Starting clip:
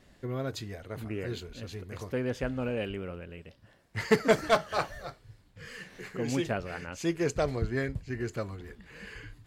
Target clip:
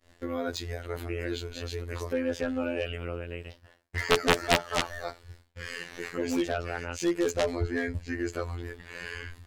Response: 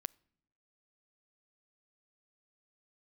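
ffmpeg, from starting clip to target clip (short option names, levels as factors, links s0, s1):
-filter_complex "[0:a]afftfilt=real='hypot(re,im)*cos(PI*b)':imag='0':win_size=2048:overlap=0.75,equalizer=f=170:w=1.8:g=-11,aeval=exprs='0.501*(cos(1*acos(clip(val(0)/0.501,-1,1)))-cos(1*PI/2))+0.126*(cos(2*acos(clip(val(0)/0.501,-1,1)))-cos(2*PI/2))+0.00355*(cos(3*acos(clip(val(0)/0.501,-1,1)))-cos(3*PI/2))+0.01*(cos(4*acos(clip(val(0)/0.501,-1,1)))-cos(4*PI/2))+0.178*(cos(7*acos(clip(val(0)/0.501,-1,1)))-cos(7*PI/2))':c=same,agate=range=0.0224:threshold=0.00224:ratio=3:detection=peak,asplit=2[s0][s1];[s1]acompressor=threshold=0.00794:ratio=6,volume=1.26[s2];[s0][s2]amix=inputs=2:normalize=0,volume=1.19"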